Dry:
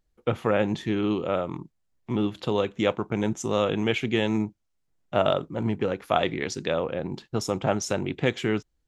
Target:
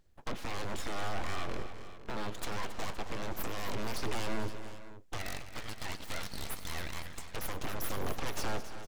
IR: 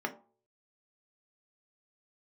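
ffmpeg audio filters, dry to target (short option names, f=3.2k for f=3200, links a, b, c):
-filter_complex "[0:a]asettb=1/sr,asplit=3[a][b][c];[a]atrim=end=5.184[d];[b]atrim=start=5.18:end=7.36,asetpts=PTS-STARTPTS,afade=t=in:d=0.004:c=qsin,afade=t=out:st=2.176:d=0.004:c=qsin,highpass=f=860:w=0.5412,highpass=f=860:w=1.3066[e];[c]atrim=start=7.356[f];[d][e]acrossfade=d=0.004:c1=hsin:c2=qsin[g];[g][f]acrossfade=d=0.004:c1=qsin:c2=hsin,alimiter=limit=-22dB:level=0:latency=1:release=197,acompressor=threshold=-31dB:ratio=3,aeval=exprs='0.0237*(abs(mod(val(0)/0.0237+3,4)-2)-1)':c=same,aphaser=in_gain=1:out_gain=1:delay=4.4:decay=0.26:speed=0.24:type=sinusoidal,aeval=exprs='abs(val(0))':c=same,aecho=1:1:96|202|273|456|518:0.133|0.133|0.237|0.112|0.168,volume=4.5dB"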